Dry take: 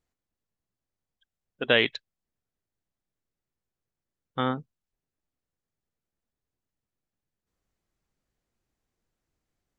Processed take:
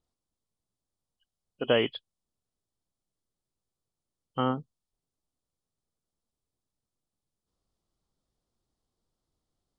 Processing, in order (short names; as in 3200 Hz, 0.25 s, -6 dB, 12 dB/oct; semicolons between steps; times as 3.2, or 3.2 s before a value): nonlinear frequency compression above 2400 Hz 1.5:1; band shelf 2000 Hz -10 dB 1 oct